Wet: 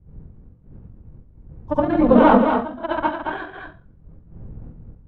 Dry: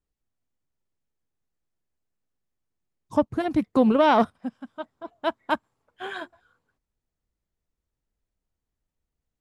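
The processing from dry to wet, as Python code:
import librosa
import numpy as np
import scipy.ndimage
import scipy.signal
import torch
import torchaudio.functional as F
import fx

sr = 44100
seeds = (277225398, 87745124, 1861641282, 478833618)

p1 = fx.dmg_wind(x, sr, seeds[0], corner_hz=90.0, level_db=-43.0)
p2 = p1 + fx.echo_single(p1, sr, ms=417, db=-5.5, dry=0)
p3 = fx.rev_plate(p2, sr, seeds[1], rt60_s=0.57, hf_ratio=1.0, predelay_ms=105, drr_db=-7.5)
p4 = fx.stretch_grains(p3, sr, factor=0.54, grain_ms=46.0)
p5 = scipy.signal.sosfilt(scipy.signal.butter(2, 2200.0, 'lowpass', fs=sr, output='sos'), p4)
y = p5 * 10.0 ** (-1.5 / 20.0)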